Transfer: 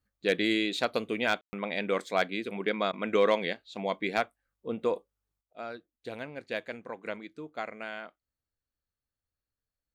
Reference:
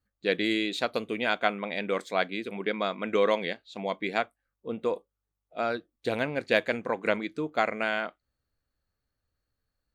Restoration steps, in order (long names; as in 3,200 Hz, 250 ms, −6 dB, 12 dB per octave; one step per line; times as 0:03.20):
clipped peaks rebuilt −14 dBFS
ambience match 0:01.41–0:01.53
repair the gap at 0:02.92/0:05.53, 11 ms
level correction +10.5 dB, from 0:05.41